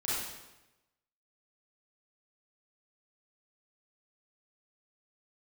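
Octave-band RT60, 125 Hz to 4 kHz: 1.1 s, 1.0 s, 1.0 s, 1.0 s, 0.95 s, 0.85 s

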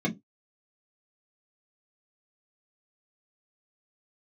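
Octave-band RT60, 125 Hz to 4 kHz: 0.20 s, 0.20 s, 0.20 s, 0.15 s, 0.10 s, 0.15 s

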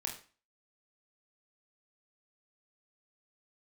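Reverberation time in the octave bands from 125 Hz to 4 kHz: 0.35 s, 0.40 s, 0.35 s, 0.40 s, 0.40 s, 0.35 s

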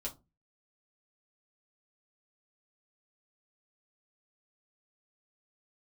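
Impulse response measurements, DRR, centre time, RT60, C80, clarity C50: -3.5 dB, 13 ms, 0.25 s, 24.5 dB, 16.5 dB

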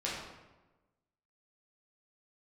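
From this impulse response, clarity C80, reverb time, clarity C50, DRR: 3.5 dB, 1.1 s, 0.5 dB, -7.0 dB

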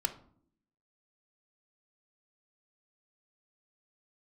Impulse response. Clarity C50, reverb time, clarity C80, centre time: 13.5 dB, 0.60 s, 18.0 dB, 8 ms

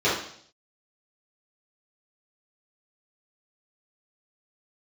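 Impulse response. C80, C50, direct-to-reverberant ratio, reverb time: 7.5 dB, 3.0 dB, -11.5 dB, 0.60 s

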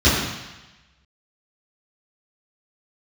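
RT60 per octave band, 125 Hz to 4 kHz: 1.1 s, 1.0 s, 0.95 s, 1.1 s, 1.2 s, 1.2 s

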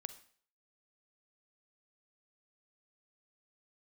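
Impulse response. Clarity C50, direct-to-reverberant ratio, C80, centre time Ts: 13.0 dB, 12.0 dB, 17.0 dB, 6 ms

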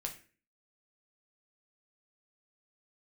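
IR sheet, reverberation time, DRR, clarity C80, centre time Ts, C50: 0.40 s, 2.0 dB, 15.5 dB, 13 ms, 11.0 dB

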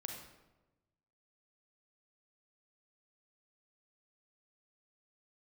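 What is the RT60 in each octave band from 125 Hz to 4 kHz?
1.5 s, 1.3 s, 1.2 s, 1.0 s, 0.85 s, 0.70 s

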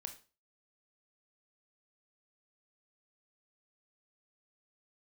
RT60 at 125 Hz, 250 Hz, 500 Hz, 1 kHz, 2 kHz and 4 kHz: 0.40 s, 0.35 s, 0.35 s, 0.35 s, 0.30 s, 0.30 s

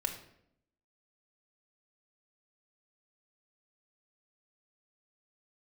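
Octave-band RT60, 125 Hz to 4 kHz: 0.90 s, 0.95 s, 0.80 s, 0.65 s, 0.65 s, 0.55 s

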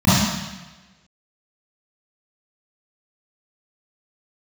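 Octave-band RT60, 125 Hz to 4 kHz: 1.2 s, 1.0 s, 1.2 s, 1.1 s, 1.3 s, 1.2 s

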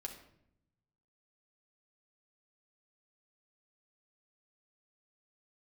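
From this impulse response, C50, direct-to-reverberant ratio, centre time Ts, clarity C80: 8.0 dB, 2.0 dB, 18 ms, 11.0 dB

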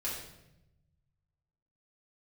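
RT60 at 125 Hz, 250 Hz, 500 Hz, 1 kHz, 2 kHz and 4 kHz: 2.1 s, 1.4 s, 1.0 s, 0.75 s, 0.75 s, 0.70 s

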